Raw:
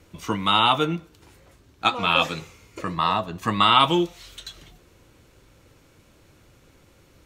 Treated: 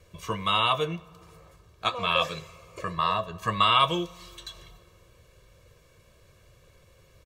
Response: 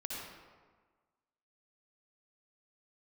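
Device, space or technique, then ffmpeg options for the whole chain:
compressed reverb return: -filter_complex "[0:a]asplit=2[s0][s1];[1:a]atrim=start_sample=2205[s2];[s1][s2]afir=irnorm=-1:irlink=0,acompressor=threshold=0.02:ratio=4,volume=0.316[s3];[s0][s3]amix=inputs=2:normalize=0,aecho=1:1:1.8:0.78,volume=0.473"

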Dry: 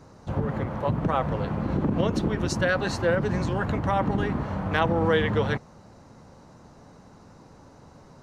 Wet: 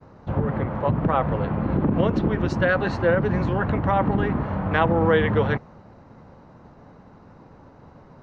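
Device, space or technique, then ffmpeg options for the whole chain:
hearing-loss simulation: -filter_complex "[0:a]lowpass=2600,agate=range=0.0224:threshold=0.00398:ratio=3:detection=peak,asettb=1/sr,asplit=3[s0][s1][s2];[s0]atrim=end=1.374[s3];[s1]atrim=start=1.37:end=1.91,asetpts=PTS-STARTPTS,afade=t=in:d=0.004:c=qsin,afade=t=out:st=0.536:d=0.004:c=qsin,lowpass=5600[s4];[s2]atrim=start=1.906[s5];[s3][s4]acrossfade=d=0.004:c1=hsin:c2=qsin[s6];[s6][s5]acrossfade=d=0.004:c1=qsin:c2=hsin,volume=1.5"

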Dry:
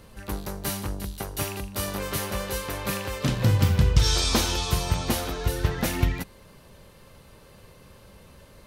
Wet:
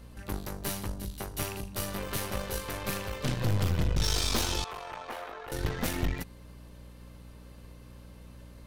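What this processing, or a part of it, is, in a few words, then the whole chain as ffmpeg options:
valve amplifier with mains hum: -filter_complex "[0:a]aeval=exprs='(tanh(15.8*val(0)+0.8)-tanh(0.8))/15.8':c=same,aeval=exprs='val(0)+0.00398*(sin(2*PI*60*n/s)+sin(2*PI*2*60*n/s)/2+sin(2*PI*3*60*n/s)/3+sin(2*PI*4*60*n/s)/4+sin(2*PI*5*60*n/s)/5)':c=same,asettb=1/sr,asplit=3[s0][s1][s2];[s0]atrim=end=4.644[s3];[s1]atrim=start=4.64:end=5.52,asetpts=PTS-STARTPTS,afade=t=in:d=0.004:c=qsin,afade=t=out:st=0.876:d=0.004:c=qsin,acrossover=split=480 2400:gain=0.0631 1 0.1[s4][s5][s6];[s4][s5][s6]amix=inputs=3:normalize=0[s7];[s2]atrim=start=5.516[s8];[s3][s7]acrossfade=d=0.004:c1=hsin:c2=qsin[s9];[s9][s8]acrossfade=d=0.004:c1=qsin:c2=hsin"

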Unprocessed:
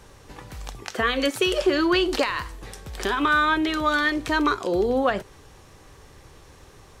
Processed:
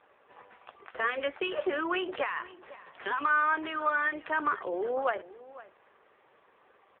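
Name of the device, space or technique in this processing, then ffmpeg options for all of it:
satellite phone: -filter_complex "[0:a]highpass=310,lowpass=3200,acrossover=split=360 3600:gain=0.112 1 0.1[s0][s1][s2];[s0][s1][s2]amix=inputs=3:normalize=0,aecho=1:1:506:0.126,volume=0.631" -ar 8000 -c:a libopencore_amrnb -b:a 5900

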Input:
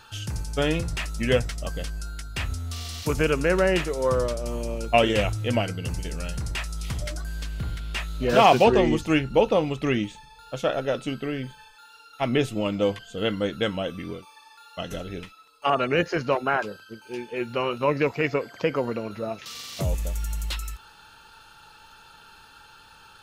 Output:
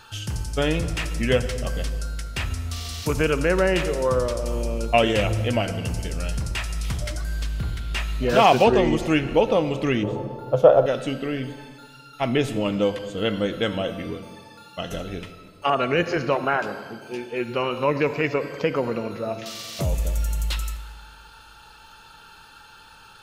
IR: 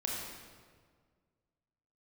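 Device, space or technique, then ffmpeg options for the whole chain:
ducked reverb: -filter_complex "[0:a]asplit=3[s0][s1][s2];[1:a]atrim=start_sample=2205[s3];[s1][s3]afir=irnorm=-1:irlink=0[s4];[s2]apad=whole_len=1024082[s5];[s4][s5]sidechaincompress=threshold=0.0631:ratio=8:attack=7.1:release=119,volume=0.316[s6];[s0][s6]amix=inputs=2:normalize=0,asettb=1/sr,asplit=3[s7][s8][s9];[s7]atrim=end=10.034[s10];[s8]atrim=start=10.03:end=10.86,asetpts=PTS-STARTPTS,afade=t=in:d=0.004:c=qsin,afade=t=out:st=0.826:d=0.004:c=qsin,equalizer=f=125:t=o:w=1:g=9,equalizer=f=250:t=o:w=1:g=-6,equalizer=f=500:t=o:w=1:g=12,equalizer=f=1000:t=o:w=1:g=8,equalizer=f=2000:t=o:w=1:g=-10,equalizer=f=4000:t=o:w=1:g=-5,equalizer=f=8000:t=o:w=1:g=-11[s11];[s9]atrim=start=10.856[s12];[s10][s11]acrossfade=d=0.004:c1=hsin:c2=qsin[s13];[s13][s12]acrossfade=d=0.004:c1=qsin:c2=hsin"

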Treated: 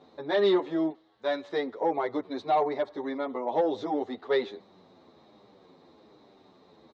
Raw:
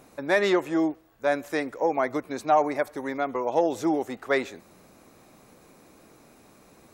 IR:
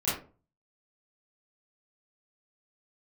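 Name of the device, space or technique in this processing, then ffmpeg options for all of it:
barber-pole flanger into a guitar amplifier: -filter_complex "[0:a]asettb=1/sr,asplit=3[s0][s1][s2];[s0]atrim=end=0.894[s3];[s1]atrim=start=0.89:end=1.48,asetpts=PTS-STARTPTS,afade=t=in:d=0.004:c=qsin,afade=t=out:st=0.586:d=0.004:c=qsin,tiltshelf=f=1100:g=-5[s4];[s2]atrim=start=1.476[s5];[s3][s4]acrossfade=d=0.004:c1=hsin:c2=qsin[s6];[s6][s5]acrossfade=d=0.004:c1=qsin:c2=hsin,asplit=2[s7][s8];[s8]adelay=8.9,afreqshift=-1.2[s9];[s7][s9]amix=inputs=2:normalize=1,asoftclip=type=tanh:threshold=0.119,highpass=94,equalizer=f=130:t=q:w=4:g=-5,equalizer=f=410:t=q:w=4:g=5,equalizer=f=890:t=q:w=4:g=3,equalizer=f=1500:t=q:w=4:g=-6,equalizer=f=2500:t=q:w=4:g=-10,equalizer=f=3800:t=q:w=4:g=9,lowpass=f=4200:w=0.5412,lowpass=f=4200:w=1.3066"

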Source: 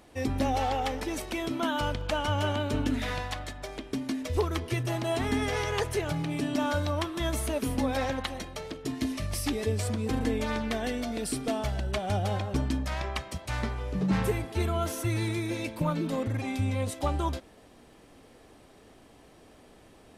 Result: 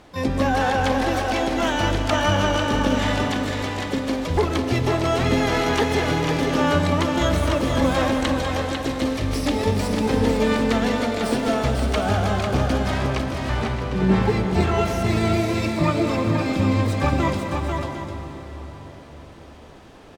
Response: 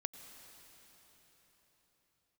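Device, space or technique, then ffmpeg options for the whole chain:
shimmer-style reverb: -filter_complex "[0:a]lowpass=5200,asplit=3[s0][s1][s2];[s0]afade=t=out:st=12.99:d=0.02[s3];[s1]aemphasis=mode=reproduction:type=75kf,afade=t=in:st=12.99:d=0.02,afade=t=out:st=14.28:d=0.02[s4];[s2]afade=t=in:st=14.28:d=0.02[s5];[s3][s4][s5]amix=inputs=3:normalize=0,aecho=1:1:58|199|497|622|752:0.119|0.211|0.562|0.211|0.266,asplit=2[s6][s7];[s7]asetrate=88200,aresample=44100,atempo=0.5,volume=0.447[s8];[s6][s8]amix=inputs=2:normalize=0[s9];[1:a]atrim=start_sample=2205[s10];[s9][s10]afir=irnorm=-1:irlink=0,volume=2.66"

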